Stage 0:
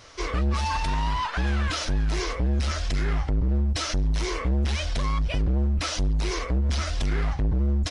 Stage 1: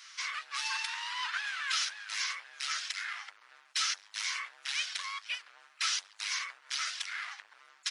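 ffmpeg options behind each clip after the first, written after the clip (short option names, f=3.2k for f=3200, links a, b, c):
-af "highpass=f=1.4k:w=0.5412,highpass=f=1.4k:w=1.3066"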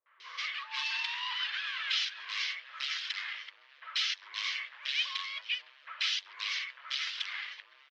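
-filter_complex "[0:a]highpass=f=350:w=0.5412,highpass=f=350:w=1.3066,equalizer=f=530:t=q:w=4:g=4,equalizer=f=760:t=q:w=4:g=-9,equalizer=f=1.4k:t=q:w=4:g=-6,equalizer=f=3.1k:t=q:w=4:g=4,lowpass=f=4.3k:w=0.5412,lowpass=f=4.3k:w=1.3066,acrossover=split=450|1400[a][b][c];[b]adelay=60[d];[c]adelay=200[e];[a][d][e]amix=inputs=3:normalize=0,volume=2.5dB"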